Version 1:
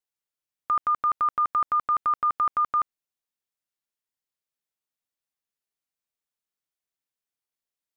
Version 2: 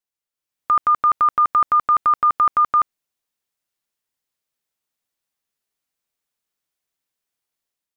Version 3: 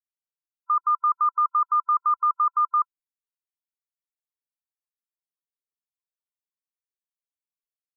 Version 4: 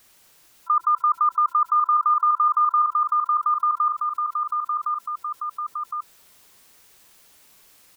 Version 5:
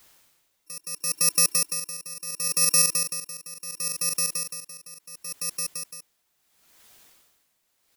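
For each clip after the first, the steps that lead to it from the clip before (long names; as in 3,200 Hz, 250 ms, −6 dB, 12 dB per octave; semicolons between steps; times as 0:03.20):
automatic gain control gain up to 7.5 dB
phaser with its sweep stopped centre 610 Hz, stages 6; spectral peaks only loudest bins 16; level −5 dB
on a send: repeating echo 1,062 ms, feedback 21%, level −5.5 dB; on the sum: envelope flattener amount 70%
samples in bit-reversed order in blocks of 64 samples; tremolo with a sine in dB 0.72 Hz, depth 19 dB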